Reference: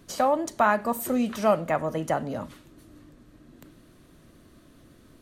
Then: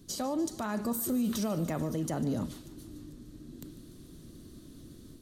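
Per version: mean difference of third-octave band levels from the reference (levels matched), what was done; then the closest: 7.0 dB: high-order bell 1.2 kHz -12 dB 2.7 oct; level rider gain up to 5 dB; peak limiter -24 dBFS, peak gain reduction 12 dB; thinning echo 147 ms, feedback 73%, high-pass 770 Hz, level -16 dB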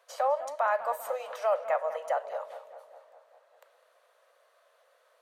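9.5 dB: steep high-pass 500 Hz 72 dB/octave; treble shelf 2.3 kHz -12 dB; peak limiter -18.5 dBFS, peak gain reduction 6 dB; tape echo 201 ms, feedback 66%, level -11.5 dB, low-pass 2.3 kHz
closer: first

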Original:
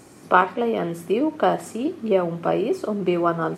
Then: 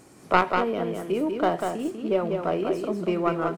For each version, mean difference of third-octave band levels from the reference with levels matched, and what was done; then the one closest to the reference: 3.5 dB: tracing distortion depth 0.11 ms; on a send: delay 194 ms -5 dB; on the sum: trim -4.5 dB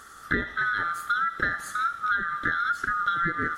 11.0 dB: split-band scrambler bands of 1 kHz; on a send: feedback echo behind a high-pass 78 ms, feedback 63%, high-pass 1.6 kHz, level -16 dB; on the sum: compression 12:1, threshold -22 dBFS, peak gain reduction 13 dB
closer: first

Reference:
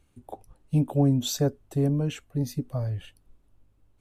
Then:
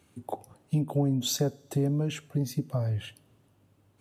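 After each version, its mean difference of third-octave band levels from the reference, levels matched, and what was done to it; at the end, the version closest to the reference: 4.0 dB: high-pass 98 Hz 24 dB/octave; compression 2.5:1, threshold -35 dBFS, peak gain reduction 12 dB; two-slope reverb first 0.56 s, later 2.8 s, from -18 dB, DRR 19.5 dB; trim +7 dB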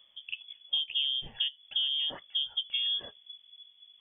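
17.0 dB: compression 6:1, threshold -30 dBFS, peak gain reduction 12.5 dB; frequency inversion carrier 3.4 kHz; trim +1.5 dB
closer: first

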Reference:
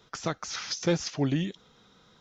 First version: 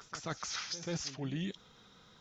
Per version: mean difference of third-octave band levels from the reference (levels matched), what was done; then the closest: 6.0 dB: peaking EQ 380 Hz -3 dB 2.3 oct; reverse; compression 6:1, threshold -35 dBFS, peak gain reduction 12.5 dB; reverse; pre-echo 135 ms -14 dB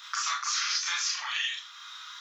15.5 dB: elliptic high-pass 1.1 kHz, stop band 60 dB; compression, threshold -38 dBFS, peak gain reduction 9.5 dB; Schroeder reverb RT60 0.3 s, combs from 27 ms, DRR -5 dB; three bands compressed up and down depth 40%; trim +6.5 dB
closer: first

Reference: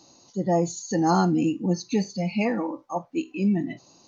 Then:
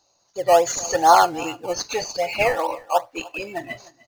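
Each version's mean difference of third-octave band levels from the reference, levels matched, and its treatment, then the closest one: 10.5 dB: gate -49 dBFS, range -19 dB; FFT filter 120 Hz 0 dB, 190 Hz -29 dB, 560 Hz +9 dB; in parallel at -9.5 dB: decimation with a swept rate 17×, swing 100% 2.5 Hz; on the sum: delay 303 ms -22 dB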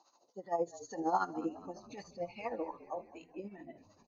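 6.0 dB: tone controls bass -5 dB, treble +11 dB; tremolo 13 Hz, depth 71%; wah-wah 2.6 Hz 490–1300 Hz, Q 2.7; on a send: frequency-shifting echo 208 ms, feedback 62%, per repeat -51 Hz, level -18 dB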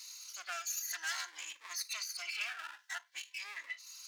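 21.5 dB: comb filter that takes the minimum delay 3 ms; high-pass 1.5 kHz 24 dB/octave; compression 2:1, threshold -51 dBFS, peak gain reduction 11.5 dB; Shepard-style phaser rising 0.53 Hz; trim +9 dB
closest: second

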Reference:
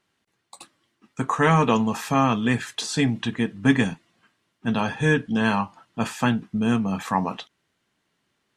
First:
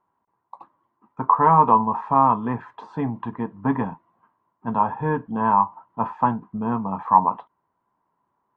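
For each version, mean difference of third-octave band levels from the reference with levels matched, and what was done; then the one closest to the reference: 8.5 dB: resonant low-pass 980 Hz, resonance Q 9; trim -4.5 dB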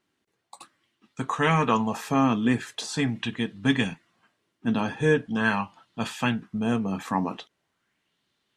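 1.5 dB: sweeping bell 0.42 Hz 280–3900 Hz +8 dB; trim -4.5 dB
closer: second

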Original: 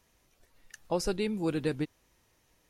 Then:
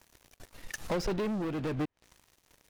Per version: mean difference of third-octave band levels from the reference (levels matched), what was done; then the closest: 7.0 dB: low-pass that closes with the level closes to 2.9 kHz, closed at -31 dBFS; compression 12:1, threshold -36 dBFS, peak gain reduction 13 dB; waveshaping leveller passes 5; tremolo 1 Hz, depth 40%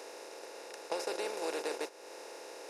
14.0 dB: spectral levelling over time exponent 0.2; gate -25 dBFS, range -17 dB; high-pass 420 Hz 24 dB/octave; compression 2.5:1, threshold -42 dBFS, peak gain reduction 12.5 dB; trim +3 dB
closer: first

